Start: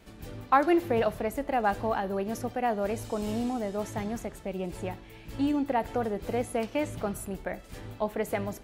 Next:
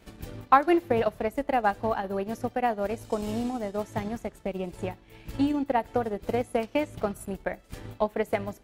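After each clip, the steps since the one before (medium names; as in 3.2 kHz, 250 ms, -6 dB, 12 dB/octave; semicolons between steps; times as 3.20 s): transient shaper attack +5 dB, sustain -8 dB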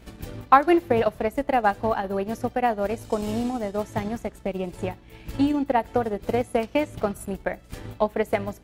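hum 60 Hz, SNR 27 dB; trim +3.5 dB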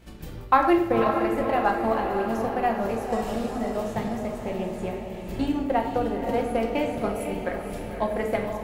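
echo that smears into a reverb 528 ms, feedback 53%, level -6.5 dB; simulated room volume 230 m³, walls mixed, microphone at 0.85 m; trim -4 dB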